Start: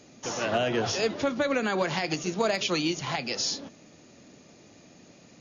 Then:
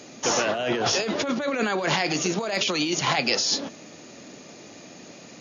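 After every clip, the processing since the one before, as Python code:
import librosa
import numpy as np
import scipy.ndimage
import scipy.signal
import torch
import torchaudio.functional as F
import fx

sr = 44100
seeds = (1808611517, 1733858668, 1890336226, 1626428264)

y = fx.highpass(x, sr, hz=250.0, slope=6)
y = fx.over_compress(y, sr, threshold_db=-32.0, ratio=-1.0)
y = F.gain(torch.from_numpy(y), 7.5).numpy()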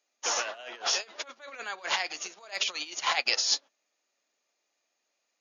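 y = scipy.signal.sosfilt(scipy.signal.butter(2, 790.0, 'highpass', fs=sr, output='sos'), x)
y = fx.upward_expand(y, sr, threshold_db=-43.0, expansion=2.5)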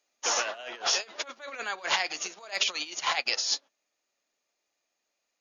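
y = fx.low_shelf(x, sr, hz=100.0, db=10.5)
y = fx.rider(y, sr, range_db=3, speed_s=0.5)
y = F.gain(torch.from_numpy(y), 1.0).numpy()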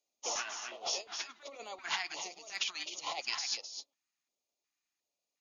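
y = x + 10.0 ** (-7.5 / 20.0) * np.pad(x, (int(259 * sr / 1000.0), 0))[:len(x)]
y = fx.dynamic_eq(y, sr, hz=700.0, q=0.97, threshold_db=-45.0, ratio=4.0, max_db=4)
y = fx.filter_lfo_notch(y, sr, shape='square', hz=1.4, low_hz=530.0, high_hz=1600.0, q=0.7)
y = F.gain(torch.from_numpy(y), -8.0).numpy()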